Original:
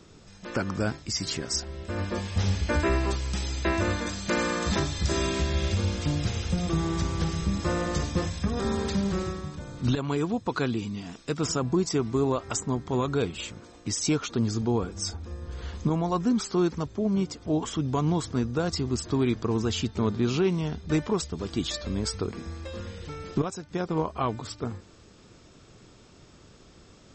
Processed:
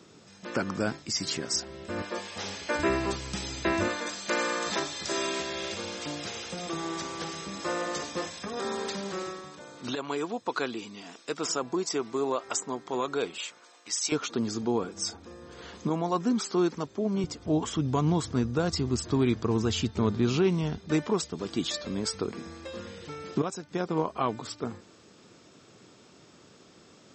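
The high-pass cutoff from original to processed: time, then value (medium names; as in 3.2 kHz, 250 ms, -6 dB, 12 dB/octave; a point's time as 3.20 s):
160 Hz
from 2.02 s 400 Hz
from 2.79 s 130 Hz
from 3.88 s 390 Hz
from 13.38 s 840 Hz
from 14.12 s 220 Hz
from 17.24 s 62 Hz
from 20.77 s 170 Hz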